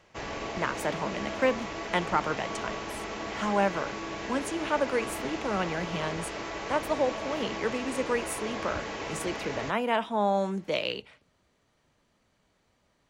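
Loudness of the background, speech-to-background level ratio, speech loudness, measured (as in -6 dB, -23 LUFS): -36.0 LUFS, 5.0 dB, -31.0 LUFS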